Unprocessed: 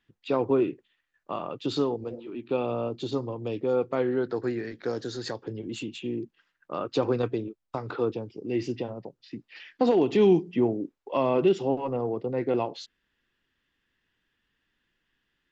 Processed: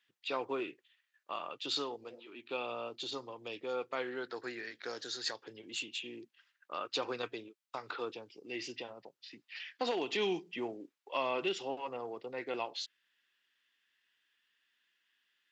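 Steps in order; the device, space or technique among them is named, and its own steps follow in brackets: filter by subtraction (in parallel: low-pass 2.8 kHz 12 dB/octave + polarity flip)

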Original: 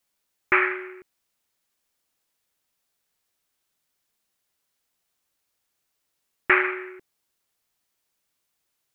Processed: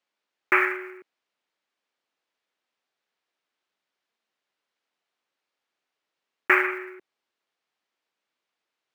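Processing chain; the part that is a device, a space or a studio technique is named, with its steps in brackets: early digital voice recorder (band-pass 270–3500 Hz; block-companded coder 7-bit)

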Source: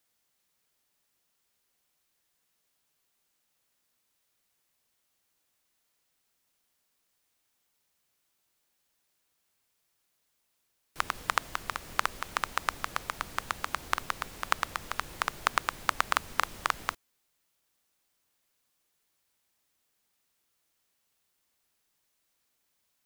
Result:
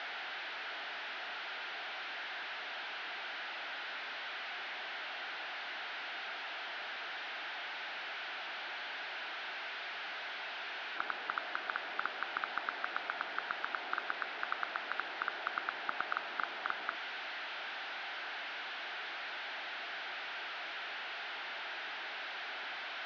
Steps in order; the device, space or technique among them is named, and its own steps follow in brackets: digital answering machine (band-pass 340–3300 Hz; one-bit delta coder 32 kbps, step -35.5 dBFS; cabinet simulation 470–3700 Hz, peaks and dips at 510 Hz -9 dB, 730 Hz +4 dB, 1.1 kHz -6 dB, 1.5 kHz +6 dB)

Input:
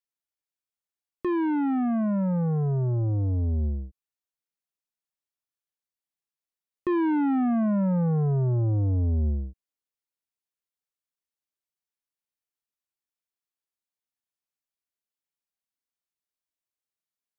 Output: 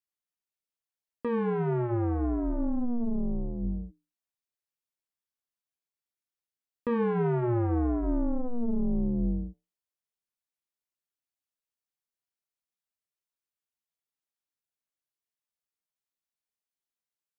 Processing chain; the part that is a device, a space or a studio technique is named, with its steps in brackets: alien voice (ring modulator 120 Hz; flange 0.37 Hz, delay 8.3 ms, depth 6.9 ms, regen -69%); trim +4 dB

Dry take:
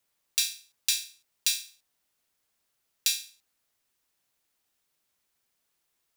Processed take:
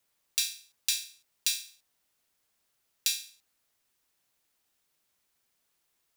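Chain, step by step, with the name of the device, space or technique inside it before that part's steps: parallel compression (in parallel at -2 dB: compression, threshold -35 dBFS, peak gain reduction 13.5 dB); on the sum: trim -4 dB

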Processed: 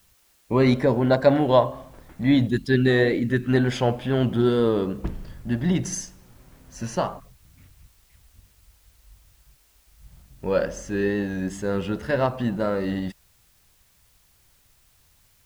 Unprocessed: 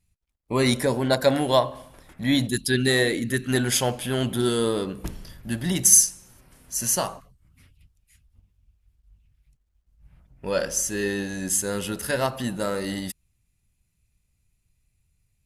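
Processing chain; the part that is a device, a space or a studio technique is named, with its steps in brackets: cassette deck with a dirty head (tape spacing loss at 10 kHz 31 dB; wow and flutter; white noise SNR 37 dB); trim +4.5 dB

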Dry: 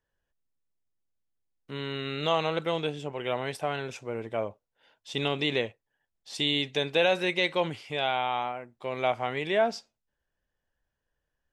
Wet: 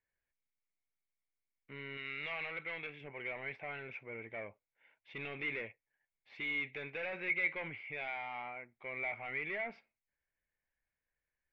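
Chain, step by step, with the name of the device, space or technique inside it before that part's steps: overdriven synthesiser ladder filter (saturation -28 dBFS, distortion -7 dB; four-pole ladder low-pass 2.3 kHz, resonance 85%); 1.97–3.01 s: tilt shelf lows -5.5 dB, about 1.3 kHz; trim +1 dB

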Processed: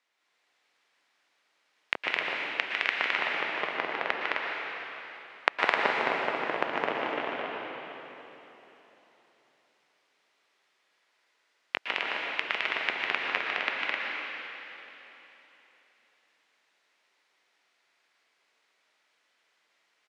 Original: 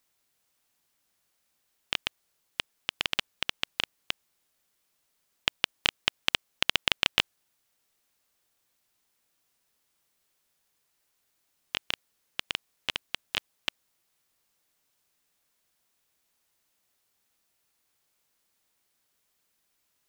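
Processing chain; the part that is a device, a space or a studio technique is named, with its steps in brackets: low-pass that closes with the level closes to 750 Hz, closed at -35 dBFS; station announcement (band-pass 400–3700 Hz; peaking EQ 2 kHz +4.5 dB 0.54 oct; loudspeakers at several distances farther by 52 m -5 dB, 73 m -2 dB, 89 m -5 dB; reverberation RT60 3.4 s, pre-delay 107 ms, DRR -1 dB); high-pass 93 Hz; trim +2 dB

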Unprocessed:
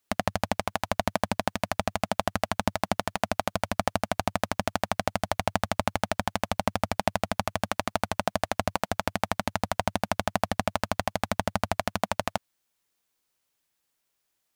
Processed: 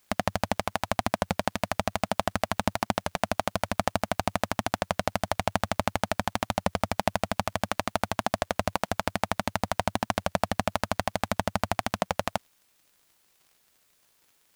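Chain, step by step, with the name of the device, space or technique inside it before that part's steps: warped LP (warped record 33 1/3 rpm, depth 160 cents; crackle; white noise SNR 37 dB)

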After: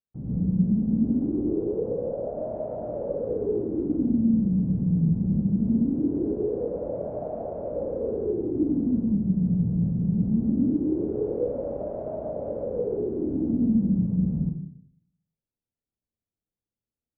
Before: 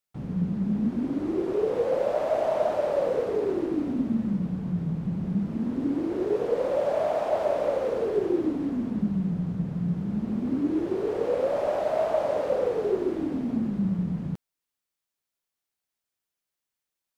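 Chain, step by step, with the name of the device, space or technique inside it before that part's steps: 1.23–2.38 s: low-pass 1.4 kHz 12 dB/octave; television next door (compression, threshold -25 dBFS, peak gain reduction 6 dB; low-pass 360 Hz 12 dB/octave; reverberation RT60 0.60 s, pre-delay 106 ms, DRR -4 dB)

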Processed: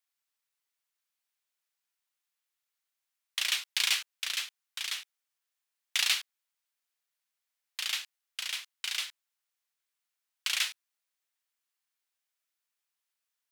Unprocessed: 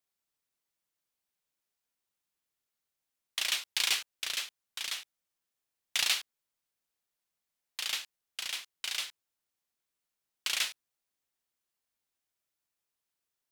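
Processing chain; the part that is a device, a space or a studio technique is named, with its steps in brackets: filter by subtraction (in parallel: low-pass 1.7 kHz 12 dB/octave + polarity flip)

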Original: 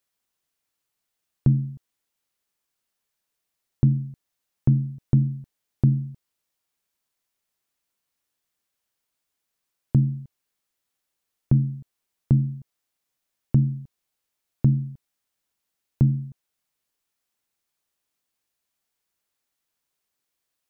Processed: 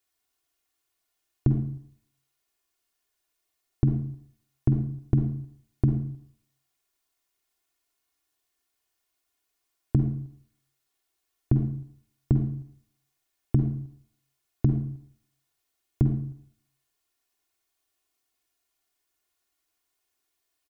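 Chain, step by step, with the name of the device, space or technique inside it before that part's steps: microphone above a desk (comb 2.8 ms, depth 82%; reverberation RT60 0.60 s, pre-delay 43 ms, DRR 5 dB); trim -1.5 dB

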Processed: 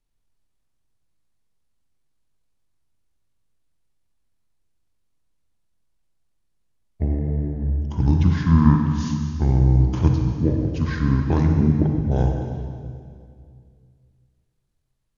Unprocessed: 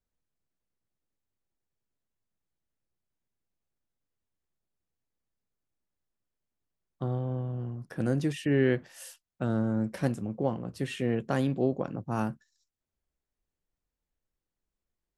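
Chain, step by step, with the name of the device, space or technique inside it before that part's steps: monster voice (pitch shift -9.5 st; bass shelf 110 Hz +8 dB; reverberation RT60 2.2 s, pre-delay 37 ms, DRR 2.5 dB); trim +6 dB

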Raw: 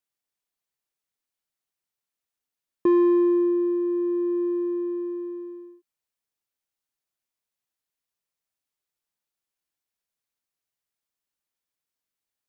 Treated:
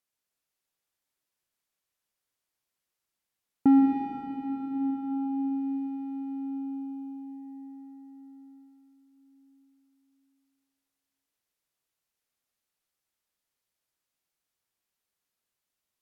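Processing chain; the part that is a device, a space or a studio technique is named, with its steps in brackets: slowed and reverbed (tape speed -22%; reverberation RT60 4.8 s, pre-delay 110 ms, DRR 2 dB)

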